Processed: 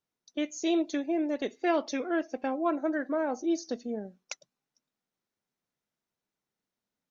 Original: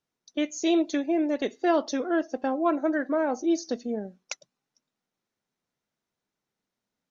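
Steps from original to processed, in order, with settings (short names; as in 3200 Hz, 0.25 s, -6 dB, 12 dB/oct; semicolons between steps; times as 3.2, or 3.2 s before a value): 1.57–2.56 bell 2300 Hz +13 dB 0.34 oct; gain -4 dB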